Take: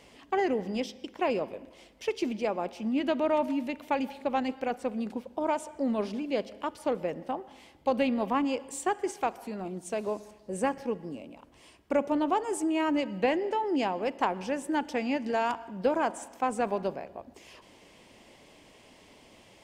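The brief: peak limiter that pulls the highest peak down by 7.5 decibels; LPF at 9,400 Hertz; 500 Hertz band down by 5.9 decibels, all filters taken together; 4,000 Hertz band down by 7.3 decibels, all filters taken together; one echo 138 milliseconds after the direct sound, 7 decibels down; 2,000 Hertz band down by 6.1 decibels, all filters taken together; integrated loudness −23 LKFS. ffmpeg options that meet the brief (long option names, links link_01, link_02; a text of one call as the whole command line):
ffmpeg -i in.wav -af "lowpass=9400,equalizer=frequency=500:width_type=o:gain=-7,equalizer=frequency=2000:width_type=o:gain=-5.5,equalizer=frequency=4000:width_type=o:gain=-8,alimiter=level_in=1dB:limit=-24dB:level=0:latency=1,volume=-1dB,aecho=1:1:138:0.447,volume=12dB" out.wav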